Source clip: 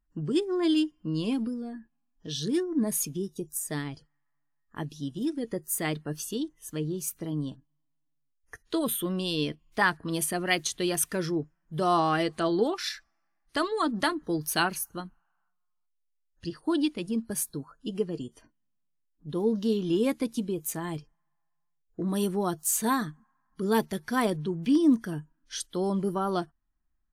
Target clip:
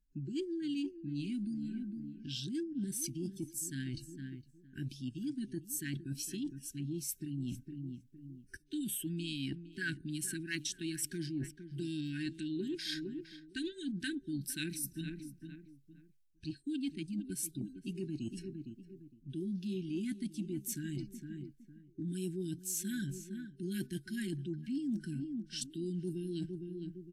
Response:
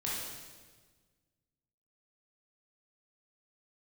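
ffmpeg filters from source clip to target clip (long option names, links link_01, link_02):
-filter_complex "[0:a]adynamicequalizer=threshold=0.00112:dfrequency=100:dqfactor=7.5:tfrequency=100:tqfactor=7.5:attack=5:release=100:ratio=0.375:range=2:mode=cutabove:tftype=bell,afftfilt=real='re*(1-between(b*sr/4096,420,1600))':imag='im*(1-between(b*sr/4096,420,1600))':win_size=4096:overlap=0.75,asetrate=40440,aresample=44100,atempo=1.09051,acrossover=split=700|1900[link_01][link_02][link_03];[link_02]adynamicsmooth=sensitivity=7.5:basefreq=1500[link_04];[link_01][link_04][link_03]amix=inputs=3:normalize=0,asplit=2[link_05][link_06];[link_06]adelay=460,lowpass=frequency=1400:poles=1,volume=-15.5dB,asplit=2[link_07][link_08];[link_08]adelay=460,lowpass=frequency=1400:poles=1,volume=0.33,asplit=2[link_09][link_10];[link_10]adelay=460,lowpass=frequency=1400:poles=1,volume=0.33[link_11];[link_05][link_07][link_09][link_11]amix=inputs=4:normalize=0,areverse,acompressor=threshold=-45dB:ratio=4,areverse,volume=6dB"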